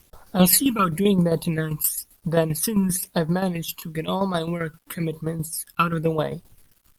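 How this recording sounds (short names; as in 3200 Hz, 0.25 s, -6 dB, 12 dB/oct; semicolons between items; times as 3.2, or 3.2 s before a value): phasing stages 12, 0.99 Hz, lowest notch 620–2700 Hz; a quantiser's noise floor 10-bit, dither none; tremolo saw down 7.6 Hz, depth 65%; Opus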